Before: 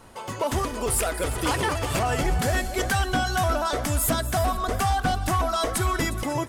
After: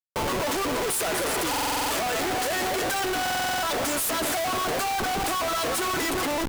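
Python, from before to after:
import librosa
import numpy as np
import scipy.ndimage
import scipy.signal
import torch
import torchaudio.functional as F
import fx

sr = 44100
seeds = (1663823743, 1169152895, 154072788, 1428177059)

y = scipy.signal.sosfilt(scipy.signal.butter(8, 270.0, 'highpass', fs=sr, output='sos'), x)
y = fx.high_shelf(y, sr, hz=5800.0, db=4.5)
y = fx.schmitt(y, sr, flips_db=-35.5)
y = fx.buffer_glitch(y, sr, at_s=(1.49, 3.21), block=2048, repeats=8)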